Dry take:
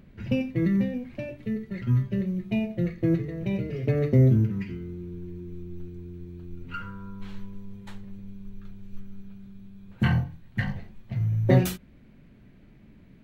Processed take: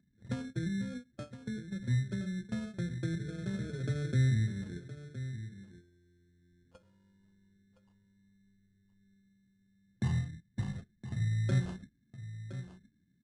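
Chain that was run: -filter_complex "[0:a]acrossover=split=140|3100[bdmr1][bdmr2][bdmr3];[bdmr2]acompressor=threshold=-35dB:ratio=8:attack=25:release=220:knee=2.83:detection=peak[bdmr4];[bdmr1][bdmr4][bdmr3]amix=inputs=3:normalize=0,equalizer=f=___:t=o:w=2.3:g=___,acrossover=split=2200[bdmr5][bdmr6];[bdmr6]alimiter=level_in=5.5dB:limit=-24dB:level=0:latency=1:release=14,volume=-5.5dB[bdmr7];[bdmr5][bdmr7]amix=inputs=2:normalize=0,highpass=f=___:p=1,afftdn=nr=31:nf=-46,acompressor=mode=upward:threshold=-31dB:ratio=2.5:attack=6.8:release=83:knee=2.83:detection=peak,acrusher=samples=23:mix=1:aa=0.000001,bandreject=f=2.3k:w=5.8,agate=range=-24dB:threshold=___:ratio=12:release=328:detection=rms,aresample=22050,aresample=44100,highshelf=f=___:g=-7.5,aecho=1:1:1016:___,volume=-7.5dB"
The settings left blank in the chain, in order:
170, 4, 60, -29dB, 7.4k, 0.237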